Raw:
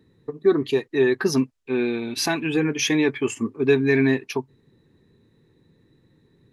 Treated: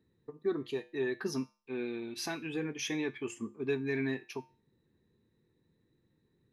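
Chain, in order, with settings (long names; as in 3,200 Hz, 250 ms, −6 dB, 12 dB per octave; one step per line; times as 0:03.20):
tuned comb filter 70 Hz, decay 0.36 s, harmonics odd, mix 60%
level −7.5 dB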